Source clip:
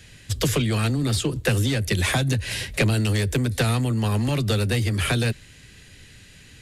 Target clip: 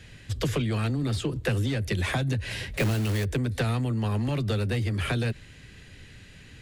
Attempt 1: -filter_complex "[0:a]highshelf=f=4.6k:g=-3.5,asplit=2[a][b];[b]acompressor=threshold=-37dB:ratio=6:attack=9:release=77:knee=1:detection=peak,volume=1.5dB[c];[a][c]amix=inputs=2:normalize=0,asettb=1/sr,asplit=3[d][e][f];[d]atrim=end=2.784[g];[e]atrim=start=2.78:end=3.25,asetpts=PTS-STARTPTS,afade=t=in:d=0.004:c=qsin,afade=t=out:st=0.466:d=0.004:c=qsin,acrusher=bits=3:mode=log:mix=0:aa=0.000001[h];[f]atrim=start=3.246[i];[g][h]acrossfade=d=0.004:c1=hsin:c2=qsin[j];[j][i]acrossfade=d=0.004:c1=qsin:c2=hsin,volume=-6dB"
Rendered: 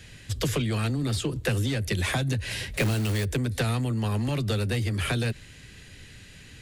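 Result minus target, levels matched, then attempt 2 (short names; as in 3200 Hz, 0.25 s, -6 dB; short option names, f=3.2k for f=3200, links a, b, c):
8000 Hz band +5.0 dB
-filter_complex "[0:a]highshelf=f=4.6k:g=-11.5,asplit=2[a][b];[b]acompressor=threshold=-37dB:ratio=6:attack=9:release=77:knee=1:detection=peak,volume=1.5dB[c];[a][c]amix=inputs=2:normalize=0,asettb=1/sr,asplit=3[d][e][f];[d]atrim=end=2.784[g];[e]atrim=start=2.78:end=3.25,asetpts=PTS-STARTPTS,afade=t=in:d=0.004:c=qsin,afade=t=out:st=0.466:d=0.004:c=qsin,acrusher=bits=3:mode=log:mix=0:aa=0.000001[h];[f]atrim=start=3.246[i];[g][h]acrossfade=d=0.004:c1=hsin:c2=qsin[j];[j][i]acrossfade=d=0.004:c1=qsin:c2=hsin,volume=-6dB"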